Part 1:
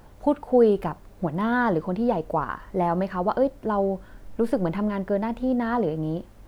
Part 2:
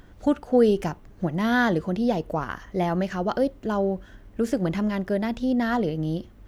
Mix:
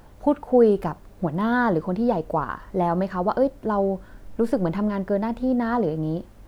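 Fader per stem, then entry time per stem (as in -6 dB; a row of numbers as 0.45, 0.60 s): +0.5, -15.5 dB; 0.00, 0.00 s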